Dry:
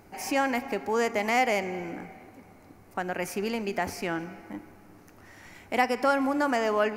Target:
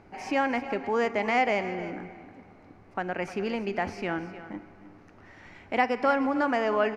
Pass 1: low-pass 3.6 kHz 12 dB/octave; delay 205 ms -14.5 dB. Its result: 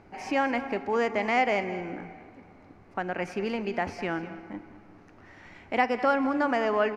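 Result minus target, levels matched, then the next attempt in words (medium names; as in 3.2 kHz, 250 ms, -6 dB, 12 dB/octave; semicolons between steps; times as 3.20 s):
echo 102 ms early
low-pass 3.6 kHz 12 dB/octave; delay 307 ms -14.5 dB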